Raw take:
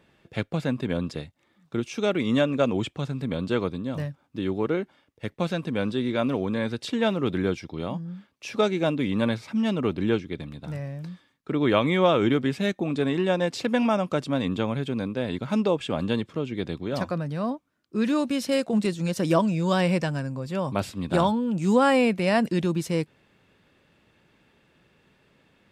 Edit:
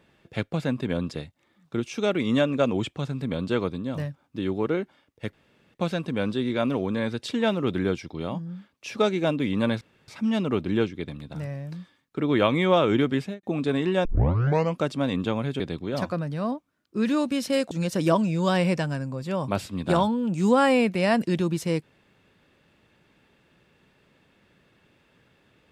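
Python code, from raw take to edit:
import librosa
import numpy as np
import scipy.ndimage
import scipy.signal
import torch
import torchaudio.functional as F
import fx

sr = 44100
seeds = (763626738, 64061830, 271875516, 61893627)

y = fx.studio_fade_out(x, sr, start_s=12.5, length_s=0.25)
y = fx.edit(y, sr, fx.insert_room_tone(at_s=5.33, length_s=0.41),
    fx.insert_room_tone(at_s=9.4, length_s=0.27),
    fx.tape_start(start_s=13.37, length_s=0.72),
    fx.cut(start_s=14.92, length_s=1.67),
    fx.cut(start_s=18.7, length_s=0.25), tone=tone)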